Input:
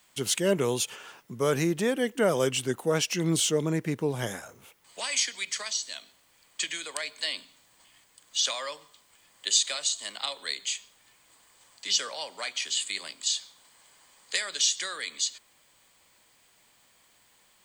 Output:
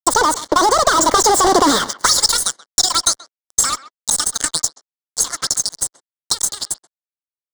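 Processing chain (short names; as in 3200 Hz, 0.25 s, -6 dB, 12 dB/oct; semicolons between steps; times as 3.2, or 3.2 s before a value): Doppler pass-by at 3.72, 23 m/s, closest 12 m; bell 990 Hz +6.5 dB 2.8 oct; in parallel at 0 dB: compressor, threshold -38 dBFS, peak gain reduction 17.5 dB; on the sum: fuzz box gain 44 dB, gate -49 dBFS; fixed phaser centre 2600 Hz, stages 4; transient shaper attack +6 dB, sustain -2 dB; speed mistake 33 rpm record played at 78 rpm; speakerphone echo 0.13 s, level -17 dB; gain +3.5 dB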